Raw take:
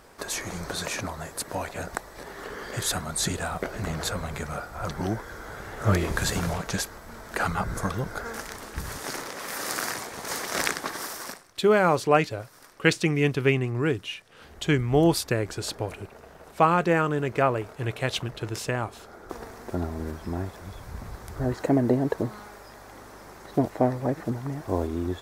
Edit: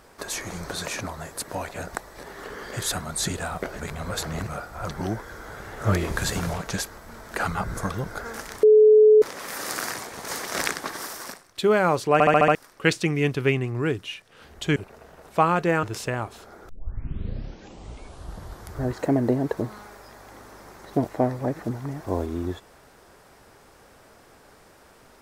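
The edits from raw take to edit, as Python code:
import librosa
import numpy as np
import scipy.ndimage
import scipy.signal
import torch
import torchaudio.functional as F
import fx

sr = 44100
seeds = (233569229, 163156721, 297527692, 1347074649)

y = fx.edit(x, sr, fx.reverse_span(start_s=3.79, length_s=0.68),
    fx.bleep(start_s=8.63, length_s=0.59, hz=429.0, db=-10.0),
    fx.stutter_over(start_s=12.13, slice_s=0.07, count=6),
    fx.cut(start_s=14.76, length_s=1.22),
    fx.cut(start_s=17.05, length_s=1.39),
    fx.tape_start(start_s=19.3, length_s=2.05), tone=tone)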